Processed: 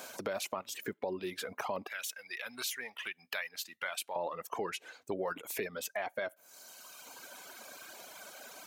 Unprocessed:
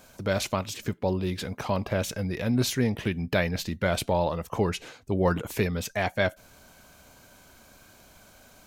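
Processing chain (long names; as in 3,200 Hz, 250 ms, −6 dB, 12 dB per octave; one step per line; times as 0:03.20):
high-pass filter 370 Hz 12 dB per octave, from 0:01.87 1,500 Hz, from 0:04.16 430 Hz
dynamic equaliser 4,800 Hz, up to −7 dB, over −48 dBFS, Q 0.71
reverb reduction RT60 1.5 s
brickwall limiter −22.5 dBFS, peak gain reduction 8.5 dB
downward compressor 2 to 1, threshold −52 dBFS, peak gain reduction 13.5 dB
level +9 dB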